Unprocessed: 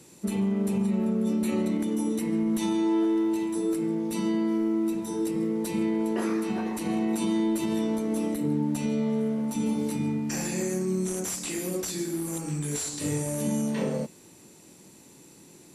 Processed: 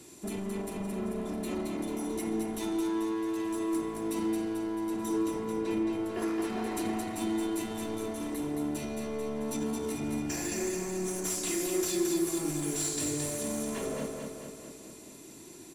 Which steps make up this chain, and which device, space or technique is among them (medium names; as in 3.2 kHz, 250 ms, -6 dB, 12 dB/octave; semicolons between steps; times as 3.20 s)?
5.22–5.89 s: low-pass 5.3 kHz -> 2.7 kHz 12 dB/octave; limiter into clipper (peak limiter -25 dBFS, peak gain reduction 7 dB; hard clipper -29.5 dBFS, distortion -15 dB); comb 2.9 ms, depth 53%; feedback delay 220 ms, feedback 58%, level -4.5 dB